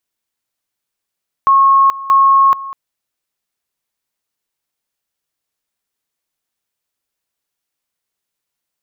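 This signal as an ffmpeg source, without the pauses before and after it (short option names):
-f lavfi -i "aevalsrc='pow(10,(-6-17.5*gte(mod(t,0.63),0.43))/20)*sin(2*PI*1090*t)':d=1.26:s=44100"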